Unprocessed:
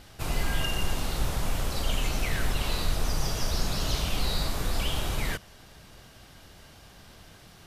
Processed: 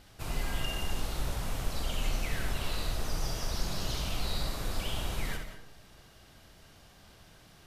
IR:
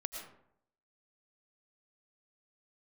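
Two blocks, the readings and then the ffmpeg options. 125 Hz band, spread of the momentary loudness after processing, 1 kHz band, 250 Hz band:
-5.5 dB, 4 LU, -5.0 dB, -5.5 dB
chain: -filter_complex "[0:a]asplit=2[s0][s1];[1:a]atrim=start_sample=2205,adelay=65[s2];[s1][s2]afir=irnorm=-1:irlink=0,volume=0.596[s3];[s0][s3]amix=inputs=2:normalize=0,volume=0.473"

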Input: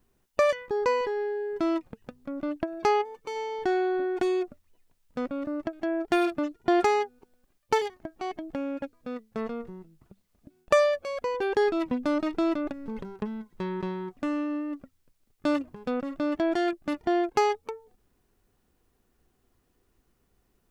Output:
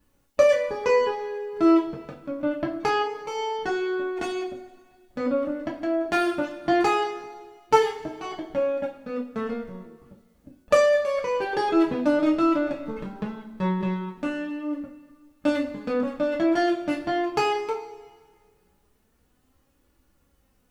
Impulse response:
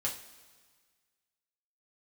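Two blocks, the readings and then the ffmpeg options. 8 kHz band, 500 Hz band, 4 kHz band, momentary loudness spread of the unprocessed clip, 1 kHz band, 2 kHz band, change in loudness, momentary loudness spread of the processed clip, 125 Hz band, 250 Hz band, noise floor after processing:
+3.5 dB, +3.5 dB, +4.0 dB, 12 LU, +3.0 dB, +4.0 dB, +3.5 dB, 14 LU, +8.0 dB, +4.0 dB, -66 dBFS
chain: -filter_complex "[0:a]flanger=delay=3.5:depth=3.3:regen=50:speed=0.2:shape=sinusoidal[s0];[1:a]atrim=start_sample=2205[s1];[s0][s1]afir=irnorm=-1:irlink=0,volume=1.88"

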